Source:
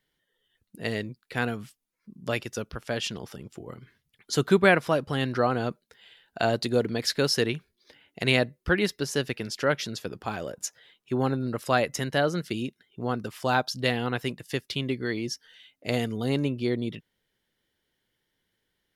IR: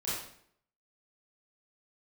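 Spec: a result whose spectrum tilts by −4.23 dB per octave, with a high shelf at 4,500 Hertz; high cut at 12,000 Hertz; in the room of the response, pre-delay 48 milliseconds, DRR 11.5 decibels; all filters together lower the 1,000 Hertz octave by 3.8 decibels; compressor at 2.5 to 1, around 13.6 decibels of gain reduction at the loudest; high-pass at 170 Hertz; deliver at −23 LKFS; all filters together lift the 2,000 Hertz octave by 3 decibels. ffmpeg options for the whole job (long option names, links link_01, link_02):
-filter_complex "[0:a]highpass=170,lowpass=12000,equalizer=frequency=1000:width_type=o:gain=-8,equalizer=frequency=2000:width_type=o:gain=8,highshelf=frequency=4500:gain=-7,acompressor=threshold=-36dB:ratio=2.5,asplit=2[link_01][link_02];[1:a]atrim=start_sample=2205,adelay=48[link_03];[link_02][link_03]afir=irnorm=-1:irlink=0,volume=-16dB[link_04];[link_01][link_04]amix=inputs=2:normalize=0,volume=14.5dB"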